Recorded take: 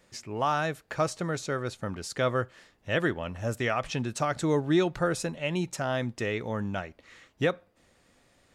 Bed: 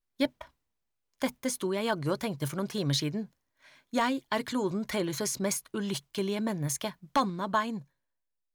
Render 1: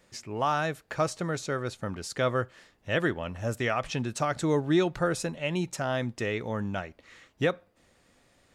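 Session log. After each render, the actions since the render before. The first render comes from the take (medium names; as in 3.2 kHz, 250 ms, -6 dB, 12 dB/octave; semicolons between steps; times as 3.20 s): 5.13–6.70 s: short-mantissa float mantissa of 8-bit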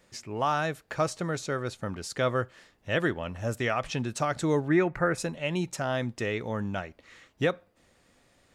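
4.68–5.18 s: resonant high shelf 2.7 kHz -8.5 dB, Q 3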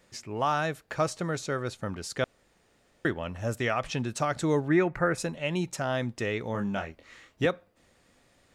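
2.24–3.05 s: room tone; 6.52–7.46 s: doubling 25 ms -5 dB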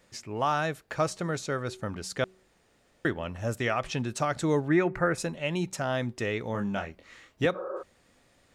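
de-hum 187.6 Hz, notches 2; 7.57–7.80 s: spectral replace 340–1700 Hz before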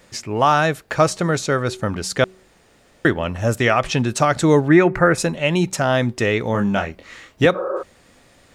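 trim +11.5 dB; peak limiter -3 dBFS, peak gain reduction 1 dB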